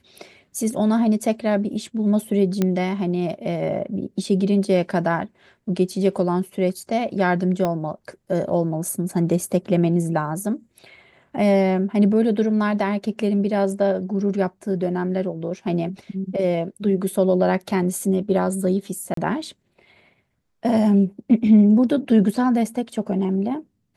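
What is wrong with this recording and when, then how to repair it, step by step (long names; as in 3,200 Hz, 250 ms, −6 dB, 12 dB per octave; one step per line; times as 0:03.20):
0:02.62: click −8 dBFS
0:07.65: click −11 dBFS
0:19.14–0:19.17: drop-out 33 ms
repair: click removal
repair the gap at 0:19.14, 33 ms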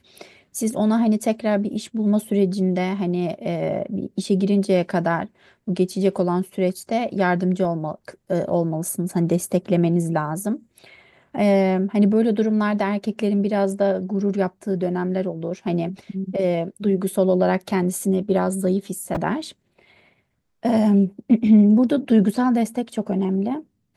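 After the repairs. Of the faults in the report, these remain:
0:07.65: click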